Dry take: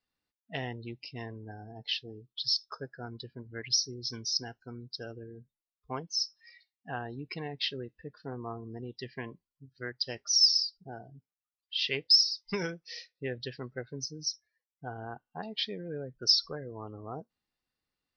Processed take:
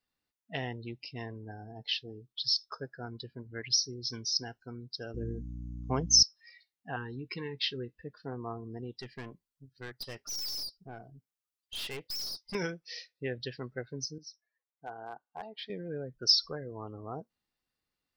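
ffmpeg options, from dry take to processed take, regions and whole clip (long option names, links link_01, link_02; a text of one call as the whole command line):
ffmpeg -i in.wav -filter_complex "[0:a]asettb=1/sr,asplit=3[link_01][link_02][link_03];[link_01]atrim=end=5.144[link_04];[link_02]atrim=start=5.14:end=6.23,asetpts=PTS-STARTPTS,afade=type=in:duration=0.004:curve=qsin,afade=type=out:start_time=1.086:duration=0.004:curve=qsin,lowpass=frequency=6400:width_type=q:width=13,lowshelf=frequency=470:gain=10.5,aeval=exprs='val(0)+0.0112*(sin(2*PI*60*n/s)+sin(2*PI*2*60*n/s)/2+sin(2*PI*3*60*n/s)/3+sin(2*PI*4*60*n/s)/4+sin(2*PI*5*60*n/s)/5)':channel_layout=same[link_05];[link_03]atrim=start=6.226[link_06];[link_04][link_05]acrossfade=duration=0.004:curve1=hsin:curve2=qsin[link_07];[link_07][link_06]acrossfade=duration=0.004:curve1=qsin:curve2=hsin,asettb=1/sr,asplit=3[link_08][link_09][link_10];[link_08]atrim=end=6.964[link_11];[link_09]atrim=start=6.96:end=7.92,asetpts=PTS-STARTPTS,afade=type=in:duration=0.004:curve=qsin,afade=type=out:start_time=0.956:duration=0.004:curve=qsin,asuperstop=centerf=670:order=8:qfactor=1.9,asplit=2[link_12][link_13];[link_13]adelay=16,volume=-13dB[link_14];[link_12][link_14]amix=inputs=2:normalize=0,atrim=end_sample=42336[link_15];[link_10]atrim=start=7.916[link_16];[link_11][link_15]acrossfade=duration=0.004:curve1=hsin:curve2=qsin[link_17];[link_17][link_16]acrossfade=duration=0.004:curve1=qsin:curve2=hsin,asettb=1/sr,asplit=3[link_18][link_19][link_20];[link_18]atrim=end=9.004[link_21];[link_19]atrim=start=9:end=12.55,asetpts=PTS-STARTPTS,afade=type=in:duration=0.004:curve=qsin,afade=type=out:start_time=3.546:duration=0.004:curve=qsin,highshelf=frequency=4500:gain=4,aeval=exprs='(tanh(63.1*val(0)+0.45)-tanh(0.45))/63.1':channel_layout=same[link_22];[link_20]atrim=start=12.546[link_23];[link_21][link_22]acrossfade=duration=0.004:curve1=hsin:curve2=qsin[link_24];[link_24][link_23]acrossfade=duration=0.004:curve1=qsin:curve2=hsin,asettb=1/sr,asplit=3[link_25][link_26][link_27];[link_25]atrim=end=14.184[link_28];[link_26]atrim=start=14.18:end=15.7,asetpts=PTS-STARTPTS,afade=type=in:duration=0.004:curve=qsin,afade=type=out:start_time=1.516:duration=0.004:curve=qsin,bandpass=frequency=870:width_type=q:width=0.89,asoftclip=type=hard:threshold=-32dB[link_29];[link_27]atrim=start=15.696[link_30];[link_28][link_29]acrossfade=duration=0.004:curve1=hsin:curve2=qsin[link_31];[link_31][link_30]acrossfade=duration=0.004:curve1=qsin:curve2=hsin" out.wav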